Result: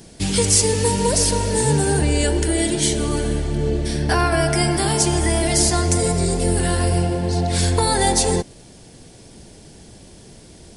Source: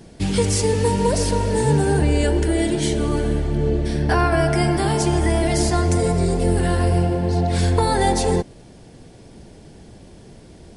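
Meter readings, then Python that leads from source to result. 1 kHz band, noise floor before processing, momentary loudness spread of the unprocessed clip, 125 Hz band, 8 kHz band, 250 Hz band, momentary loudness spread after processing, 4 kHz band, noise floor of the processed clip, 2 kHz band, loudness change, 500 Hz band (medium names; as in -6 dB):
-0.5 dB, -45 dBFS, 3 LU, -1.0 dB, +9.0 dB, -1.0 dB, 6 LU, +6.0 dB, -44 dBFS, +1.5 dB, +1.0 dB, -1.0 dB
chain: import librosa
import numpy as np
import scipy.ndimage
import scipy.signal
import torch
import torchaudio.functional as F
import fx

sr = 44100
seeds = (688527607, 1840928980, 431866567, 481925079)

y = fx.high_shelf(x, sr, hz=3600.0, db=12.0)
y = y * 10.0 ** (-1.0 / 20.0)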